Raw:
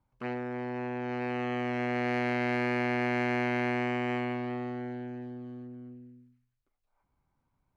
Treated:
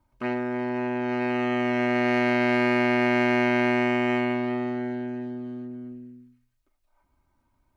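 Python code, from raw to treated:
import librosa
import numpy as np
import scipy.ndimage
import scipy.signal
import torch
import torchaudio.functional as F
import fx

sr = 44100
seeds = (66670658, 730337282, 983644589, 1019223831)

y = x + 0.53 * np.pad(x, (int(3.2 * sr / 1000.0), 0))[:len(x)]
y = F.gain(torch.from_numpy(y), 6.0).numpy()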